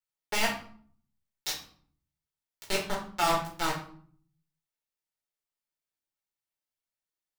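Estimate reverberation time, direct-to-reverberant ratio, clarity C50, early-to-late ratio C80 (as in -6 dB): 0.55 s, -3.0 dB, 7.0 dB, 11.0 dB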